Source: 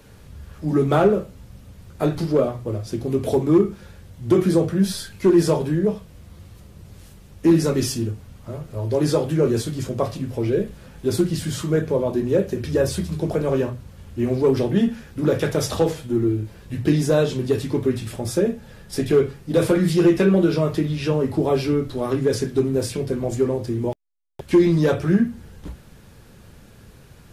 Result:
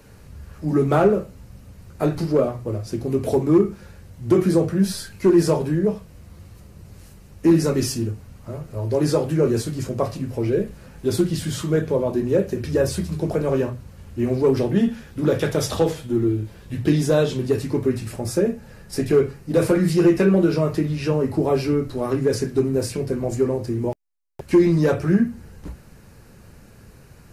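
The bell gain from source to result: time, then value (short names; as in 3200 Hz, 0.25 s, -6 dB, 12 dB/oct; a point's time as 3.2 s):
bell 3400 Hz 0.26 oct
-7.5 dB
from 11.05 s +1 dB
from 11.95 s -5.5 dB
from 14.84 s +1 dB
from 17.47 s -10.5 dB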